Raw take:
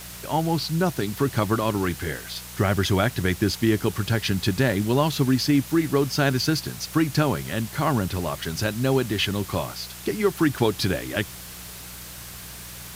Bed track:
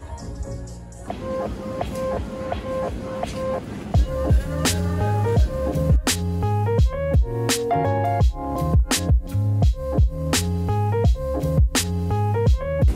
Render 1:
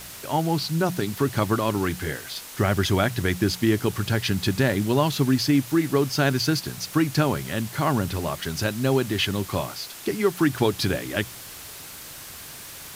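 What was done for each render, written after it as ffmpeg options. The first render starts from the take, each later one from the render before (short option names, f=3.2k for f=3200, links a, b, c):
-af "bandreject=f=60:t=h:w=4,bandreject=f=120:t=h:w=4,bandreject=f=180:t=h:w=4"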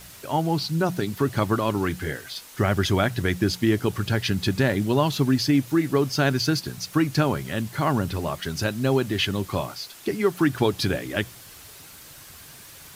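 -af "afftdn=nr=6:nf=-40"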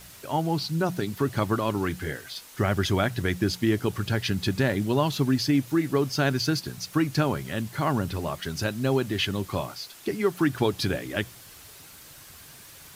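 -af "volume=-2.5dB"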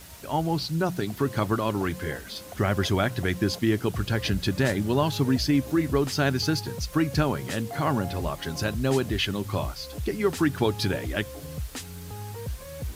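-filter_complex "[1:a]volume=-16.5dB[a];[0:a][a]amix=inputs=2:normalize=0"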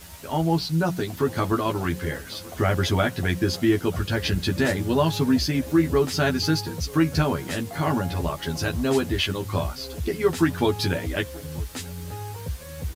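-filter_complex "[0:a]asplit=2[a][b];[b]adelay=12,volume=-2dB[c];[a][c]amix=inputs=2:normalize=0,asplit=2[d][e];[e]adelay=932.9,volume=-22dB,highshelf=f=4k:g=-21[f];[d][f]amix=inputs=2:normalize=0"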